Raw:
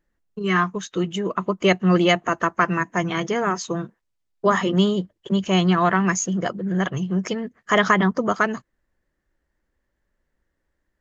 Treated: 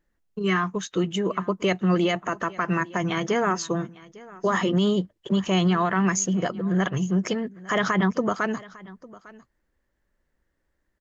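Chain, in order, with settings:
brickwall limiter −14 dBFS, peak gain reduction 10 dB
on a send: single-tap delay 852 ms −21 dB

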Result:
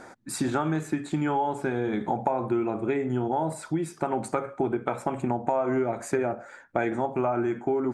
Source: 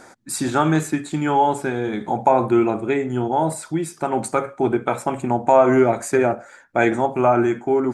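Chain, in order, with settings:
high-shelf EQ 3,600 Hz −9 dB
downward compressor 6 to 1, threshold −23 dBFS, peak gain reduction 13 dB

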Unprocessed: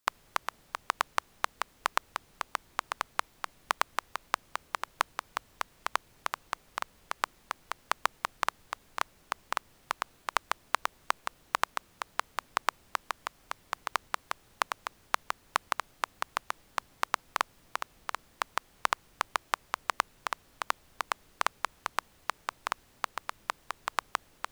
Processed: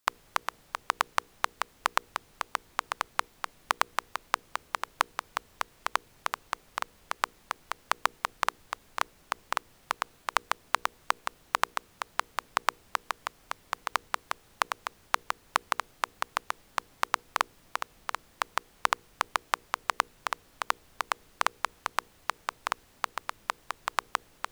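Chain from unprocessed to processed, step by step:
mains-hum notches 60/120/180/240/300/360/420/480 Hz
level +2 dB

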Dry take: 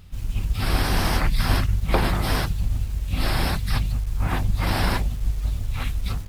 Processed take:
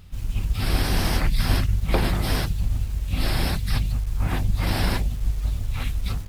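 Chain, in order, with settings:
dynamic equaliser 1,100 Hz, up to −5 dB, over −39 dBFS, Q 0.97

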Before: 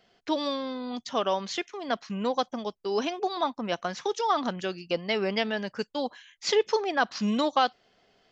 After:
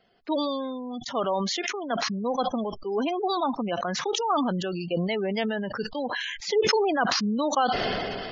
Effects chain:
gate on every frequency bin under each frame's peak −20 dB strong
high-shelf EQ 2,400 Hz −4.5 dB
level that may fall only so fast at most 22 dB per second

